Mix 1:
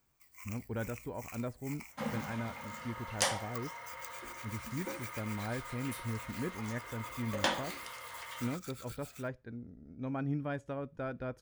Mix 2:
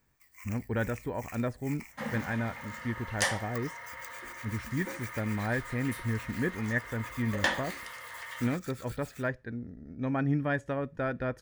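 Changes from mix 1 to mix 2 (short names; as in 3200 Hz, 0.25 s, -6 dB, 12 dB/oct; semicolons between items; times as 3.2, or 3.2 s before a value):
speech +6.5 dB; master: add bell 1800 Hz +11.5 dB 0.25 oct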